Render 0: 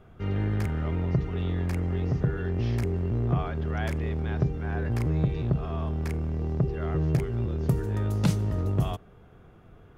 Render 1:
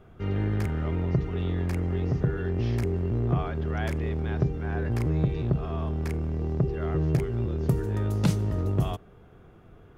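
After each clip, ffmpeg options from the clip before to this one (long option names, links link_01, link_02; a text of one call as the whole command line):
ffmpeg -i in.wav -af "equalizer=frequency=360:width_type=o:width=0.67:gain=2.5" out.wav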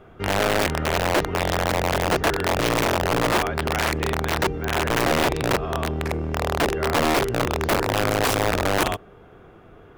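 ffmpeg -i in.wav -af "aeval=exprs='(mod(11.9*val(0)+1,2)-1)/11.9':channel_layout=same,bass=frequency=250:gain=-8,treble=frequency=4000:gain=-5,volume=8.5dB" out.wav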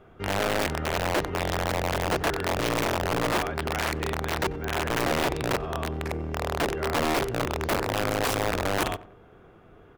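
ffmpeg -i in.wav -filter_complex "[0:a]asplit=2[link_01][link_02];[link_02]adelay=92,lowpass=frequency=1500:poles=1,volume=-16dB,asplit=2[link_03][link_04];[link_04]adelay=92,lowpass=frequency=1500:poles=1,volume=0.37,asplit=2[link_05][link_06];[link_06]adelay=92,lowpass=frequency=1500:poles=1,volume=0.37[link_07];[link_01][link_03][link_05][link_07]amix=inputs=4:normalize=0,volume=-5dB" out.wav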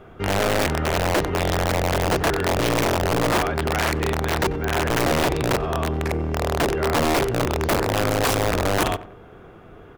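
ffmpeg -i in.wav -af "asoftclip=type=tanh:threshold=-22dB,volume=8dB" out.wav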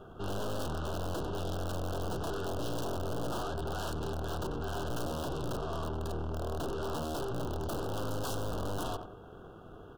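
ffmpeg -i in.wav -af "aeval=exprs='(tanh(39.8*val(0)+0.6)-tanh(0.6))/39.8':channel_layout=same,asuperstop=centerf=2100:order=8:qfactor=1.7,volume=-2.5dB" out.wav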